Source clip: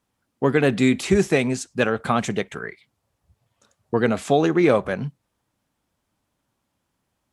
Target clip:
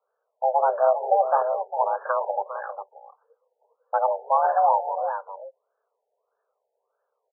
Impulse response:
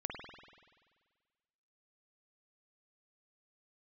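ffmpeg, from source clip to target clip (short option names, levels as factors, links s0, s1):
-filter_complex "[0:a]acrusher=samples=16:mix=1:aa=0.000001,afreqshift=390,asplit=2[s0][s1];[s1]aecho=0:1:404:0.335[s2];[s0][s2]amix=inputs=2:normalize=0,afftfilt=real='re*lt(b*sr/1024,900*pow(1800/900,0.5+0.5*sin(2*PI*1.6*pts/sr)))':imag='im*lt(b*sr/1024,900*pow(1800/900,0.5+0.5*sin(2*PI*1.6*pts/sr)))':win_size=1024:overlap=0.75,volume=0.794"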